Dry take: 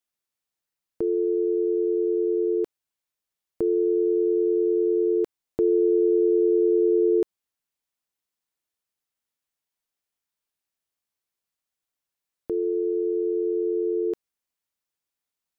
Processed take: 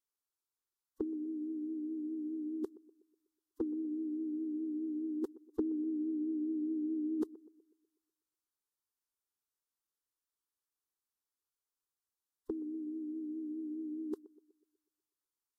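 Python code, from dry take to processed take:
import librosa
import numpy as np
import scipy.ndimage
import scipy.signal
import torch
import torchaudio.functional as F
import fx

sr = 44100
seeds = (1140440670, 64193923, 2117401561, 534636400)

p1 = fx.pitch_keep_formants(x, sr, semitones=-6.0)
p2 = fx.vibrato(p1, sr, rate_hz=4.8, depth_cents=50.0)
p3 = fx.fixed_phaser(p2, sr, hz=630.0, stages=6)
p4 = p3 + fx.echo_banded(p3, sr, ms=123, feedback_pct=49, hz=390.0, wet_db=-18.5, dry=0)
y = p4 * librosa.db_to_amplitude(-5.0)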